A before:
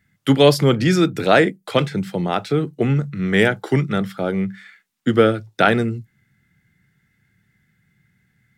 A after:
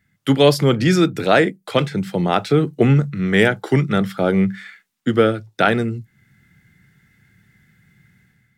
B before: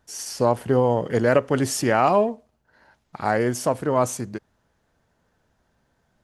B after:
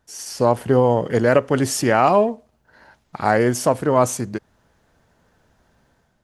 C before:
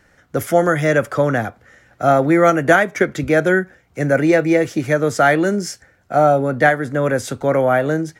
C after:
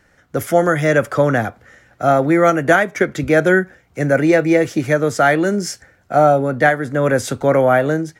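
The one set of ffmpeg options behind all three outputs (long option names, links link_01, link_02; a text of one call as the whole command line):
ffmpeg -i in.wav -af "dynaudnorm=framelen=100:gausssize=7:maxgain=8.5dB,volume=-1dB" out.wav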